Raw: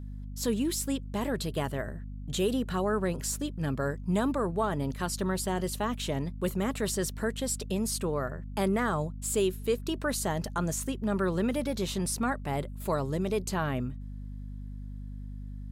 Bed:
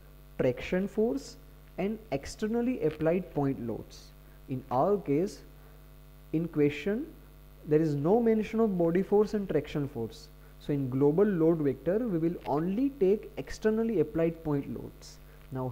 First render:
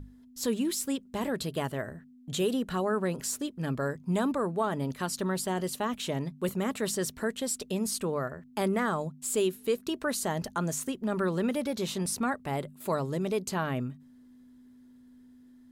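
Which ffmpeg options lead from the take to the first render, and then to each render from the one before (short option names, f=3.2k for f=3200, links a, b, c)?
-af "bandreject=f=50:t=h:w=6,bandreject=f=100:t=h:w=6,bandreject=f=150:t=h:w=6,bandreject=f=200:t=h:w=6"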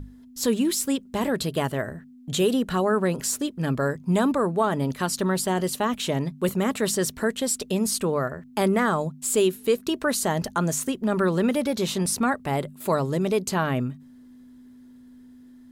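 -af "volume=6.5dB"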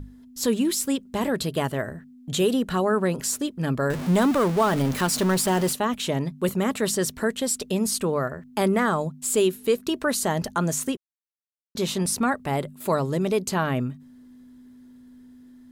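-filter_complex "[0:a]asettb=1/sr,asplit=3[a][b][c];[a]atrim=end=3.904[d];[b]atrim=start=3.9:end=5.73,asetpts=PTS-STARTPTS,afade=t=in:d=0.004:c=qsin,afade=t=out:st=1.826:d=0.004:c=qsin,aeval=exprs='val(0)+0.5*0.0473*sgn(val(0))':c=same[e];[c]atrim=start=5.726[f];[d][e]acrossfade=d=0.004:c1=hsin:c2=qsin[g];[g][f]acrossfade=d=0.004:c1=qsin:c2=hsin,asplit=3[h][i][j];[h]atrim=end=10.97,asetpts=PTS-STARTPTS,afade=t=out:st=10.966:d=0.004:c=hsin[k];[i]atrim=start=10.97:end=11.75,asetpts=PTS-STARTPTS,volume=0[l];[j]atrim=start=11.75,asetpts=PTS-STARTPTS,afade=t=in:d=0.004:c=hsin[m];[k][l][m]concat=n=3:v=0:a=1"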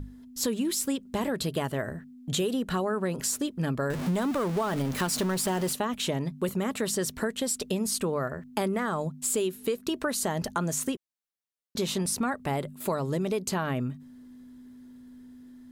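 -af "acompressor=threshold=-25dB:ratio=6"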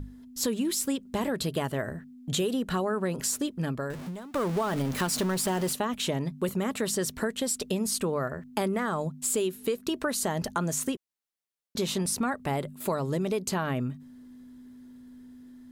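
-filter_complex "[0:a]asplit=2[a][b];[a]atrim=end=4.34,asetpts=PTS-STARTPTS,afade=t=out:st=3.5:d=0.84:silence=0.0707946[c];[b]atrim=start=4.34,asetpts=PTS-STARTPTS,afade=t=in:d=0.004:c=hsin:silence=0.0707946[d];[c][d]concat=n=2:v=0:a=1"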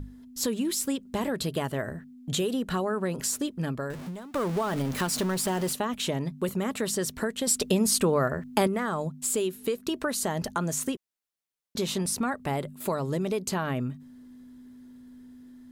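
-filter_complex "[0:a]asettb=1/sr,asplit=3[a][b][c];[a]atrim=end=7.474[d];[b]atrim=start=7.47:end=8.67,asetpts=PTS-STARTPTS,afade=t=in:d=0.004:c=qsin,afade=t=out:st=1.196:d=0.004:c=qsin,acontrast=34[e];[c]atrim=start=8.666[f];[d][e]acrossfade=d=0.004:c1=hsin:c2=qsin[g];[g][f]acrossfade=d=0.004:c1=qsin:c2=hsin"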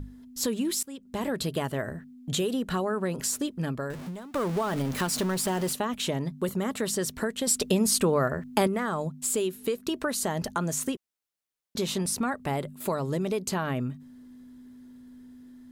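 -filter_complex "[0:a]asettb=1/sr,asplit=3[a][b][c];[a]atrim=end=6.174[d];[b]atrim=start=6.17:end=6.8,asetpts=PTS-STARTPTS,afade=t=in:d=0.004:c=qsin,afade=t=out:st=0.626:d=0.004:c=qsin,equalizer=f=2.5k:t=o:w=0.2:g=-6[e];[c]atrim=start=6.796[f];[d][e]acrossfade=d=0.004:c1=hsin:c2=qsin[g];[g][f]acrossfade=d=0.004:c1=qsin:c2=hsin,asplit=2[h][i];[h]atrim=end=0.83,asetpts=PTS-STARTPTS,afade=t=out:st=0.826:d=0.004:c=hsin:silence=0.0841395[j];[i]atrim=start=0.83,asetpts=PTS-STARTPTS,afade=t=in:d=0.47:silence=0.0841395[k];[j][k]concat=n=2:v=0:a=1"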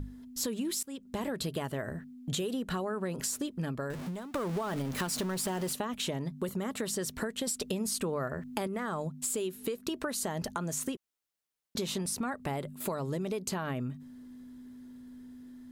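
-af "alimiter=limit=-16.5dB:level=0:latency=1:release=328,acompressor=threshold=-32dB:ratio=3"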